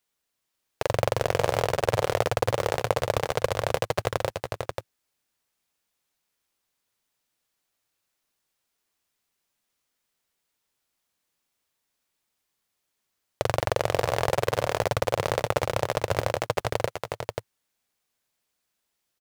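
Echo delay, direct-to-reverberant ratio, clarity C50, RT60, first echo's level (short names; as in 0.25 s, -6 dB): 0.384 s, none, none, none, -11.5 dB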